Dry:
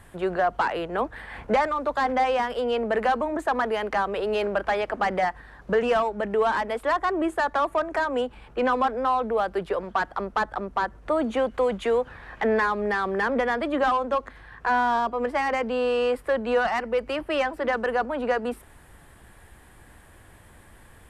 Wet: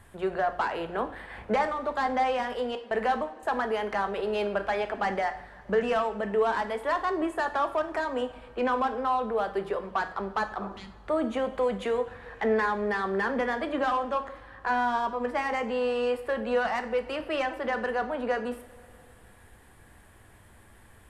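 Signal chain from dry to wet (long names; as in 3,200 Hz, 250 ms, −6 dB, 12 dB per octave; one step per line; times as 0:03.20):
0:02.75–0:03.43: noise gate with hold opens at −17 dBFS
0:10.64–0:10.86: healed spectral selection 240–1,800 Hz both
coupled-rooms reverb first 0.5 s, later 3.1 s, from −19 dB, DRR 7 dB
level −4.5 dB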